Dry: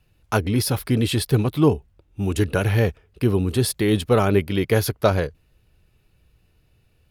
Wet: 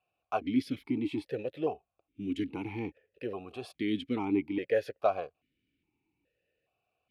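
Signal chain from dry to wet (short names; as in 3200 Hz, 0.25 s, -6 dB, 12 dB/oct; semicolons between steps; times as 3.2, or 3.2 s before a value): vowel sequencer 2.4 Hz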